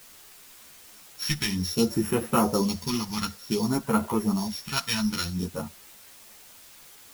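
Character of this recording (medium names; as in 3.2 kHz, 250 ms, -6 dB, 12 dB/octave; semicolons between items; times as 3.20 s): a buzz of ramps at a fixed pitch in blocks of 8 samples; phasing stages 2, 0.56 Hz, lowest notch 400–4800 Hz; a quantiser's noise floor 8-bit, dither triangular; a shimmering, thickened sound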